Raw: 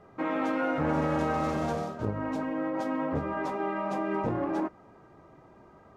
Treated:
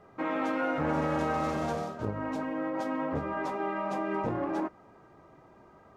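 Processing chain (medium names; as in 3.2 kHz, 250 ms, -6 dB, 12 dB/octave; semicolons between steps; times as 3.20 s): bass shelf 450 Hz -3 dB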